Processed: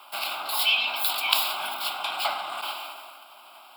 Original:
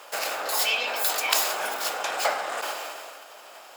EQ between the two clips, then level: dynamic bell 3.6 kHz, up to +6 dB, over -41 dBFS, Q 1.2; static phaser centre 1.8 kHz, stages 6; 0.0 dB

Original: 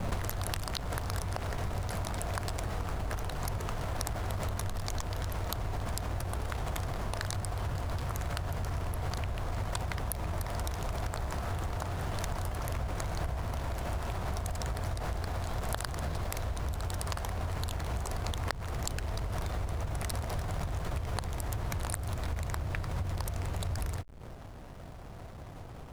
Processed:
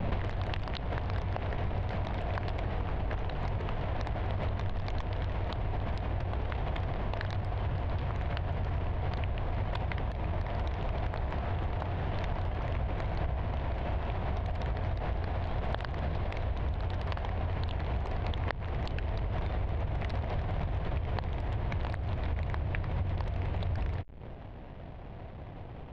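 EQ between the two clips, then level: low-pass 3.3 kHz 24 dB/octave; peaking EQ 1.3 kHz -6 dB 0.61 oct; +2.0 dB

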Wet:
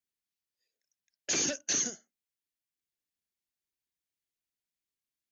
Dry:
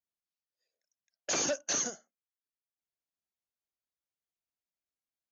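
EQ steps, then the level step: high-order bell 840 Hz -9 dB; +2.0 dB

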